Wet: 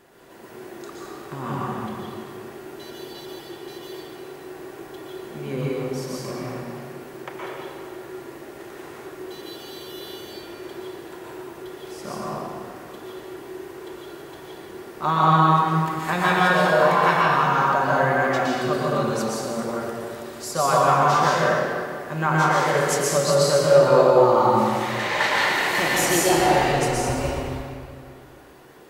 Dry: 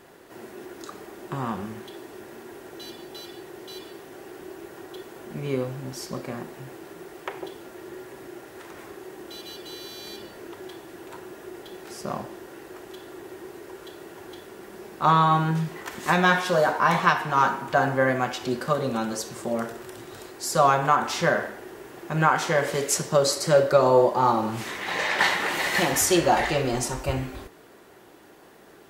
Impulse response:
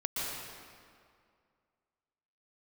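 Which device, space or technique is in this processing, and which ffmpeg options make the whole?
stairwell: -filter_complex "[0:a]asettb=1/sr,asplit=3[a][b][c];[a]atrim=end=15.724[d];[b]atrim=start=15.72:end=17.43,asetpts=PTS-STARTPTS,afade=t=in:d=0.004:c=qsin,afade=t=out:st=1.706:d=0.004:c=qsin,bandreject=f=5.9k:w=8.9[e];[c]atrim=start=17.426[f];[d][e]acrossfade=d=0.004:c1=hsin:c2=qsin[g];[g][f]acrossfade=d=0.004:c1=qsin:c2=hsin[h];[1:a]atrim=start_sample=2205[i];[h][i]afir=irnorm=-1:irlink=0,volume=-2.5dB"

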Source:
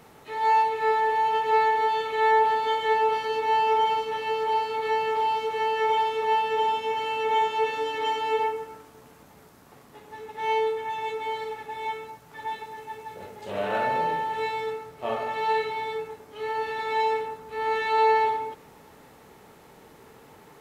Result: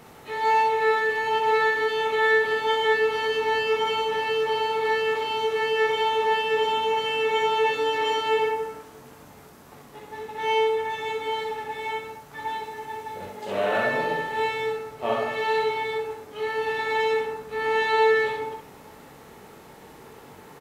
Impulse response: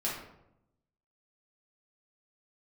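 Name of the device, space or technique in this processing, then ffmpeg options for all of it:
slapback doubling: -filter_complex "[0:a]asettb=1/sr,asplit=3[a][b][c];[a]atrim=end=13.294[d];[b]atrim=start=13.29:end=13.76,asetpts=PTS-STARTPTS,afade=t=in:d=0.004:c=qsin,afade=t=out:st=0.466:d=0.004:c=qsin,highpass=150[e];[c]atrim=start=13.756[f];[d][e]acrossfade=d=0.004:c1=hsin:c2=qsin[g];[g][f]acrossfade=d=0.004:c1=qsin:c2=hsin,asplit=3[h][i][j];[i]adelay=21,volume=-8dB[k];[j]adelay=63,volume=-5.5dB[l];[h][k][l]amix=inputs=3:normalize=0,volume=3dB"

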